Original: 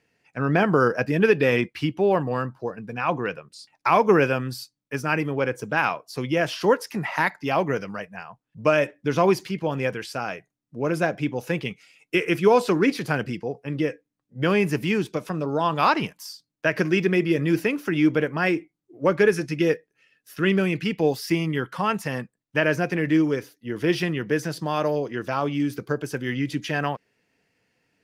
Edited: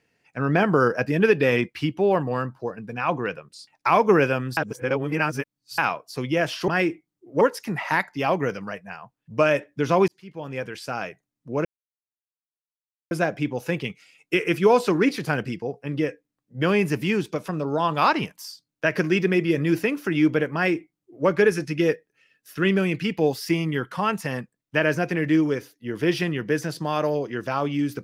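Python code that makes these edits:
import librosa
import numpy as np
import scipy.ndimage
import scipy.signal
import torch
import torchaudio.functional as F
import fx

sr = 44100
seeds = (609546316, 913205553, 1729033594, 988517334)

y = fx.edit(x, sr, fx.reverse_span(start_s=4.57, length_s=1.21),
    fx.fade_in_span(start_s=9.35, length_s=0.91),
    fx.insert_silence(at_s=10.92, length_s=1.46),
    fx.duplicate(start_s=18.35, length_s=0.73, to_s=6.68), tone=tone)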